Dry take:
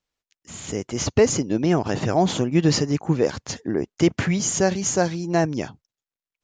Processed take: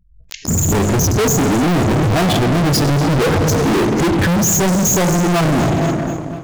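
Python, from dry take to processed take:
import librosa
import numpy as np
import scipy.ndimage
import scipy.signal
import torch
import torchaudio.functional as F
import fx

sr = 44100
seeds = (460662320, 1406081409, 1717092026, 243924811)

p1 = 10.0 ** (-15.5 / 20.0) * np.tanh(x / 10.0 ** (-15.5 / 20.0))
p2 = x + (p1 * 10.0 ** (-8.0 / 20.0))
p3 = fx.low_shelf(p2, sr, hz=190.0, db=7.5)
p4 = fx.spec_gate(p3, sr, threshold_db=-10, keep='strong')
p5 = fx.chorus_voices(p4, sr, voices=4, hz=0.84, base_ms=21, depth_ms=2.4, mix_pct=25)
p6 = fx.rev_plate(p5, sr, seeds[0], rt60_s=2.3, hf_ratio=0.7, predelay_ms=0, drr_db=10.0)
p7 = fx.rider(p6, sr, range_db=10, speed_s=0.5)
p8 = fx.leveller(p7, sr, passes=5)
p9 = p8 + fx.echo_feedback(p8, sr, ms=244, feedback_pct=58, wet_db=-17.0, dry=0)
p10 = np.clip(p9, -10.0 ** (-19.5 / 20.0), 10.0 ** (-19.5 / 20.0))
p11 = fx.pre_swell(p10, sr, db_per_s=85.0)
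y = p11 * 10.0 ** (6.0 / 20.0)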